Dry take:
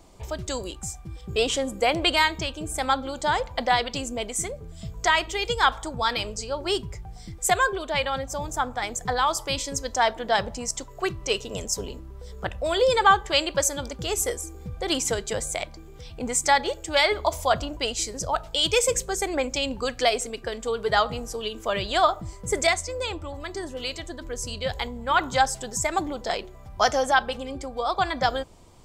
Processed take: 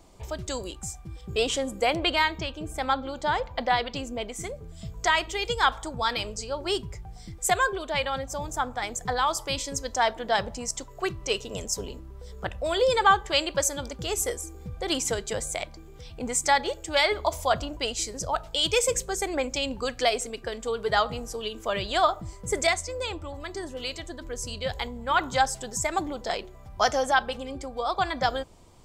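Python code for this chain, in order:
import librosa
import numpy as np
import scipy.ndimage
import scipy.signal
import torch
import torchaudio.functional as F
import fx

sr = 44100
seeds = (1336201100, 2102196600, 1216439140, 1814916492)

y = fx.peak_eq(x, sr, hz=9100.0, db=-10.5, octaves=1.2, at=(1.96, 4.44))
y = y * 10.0 ** (-2.0 / 20.0)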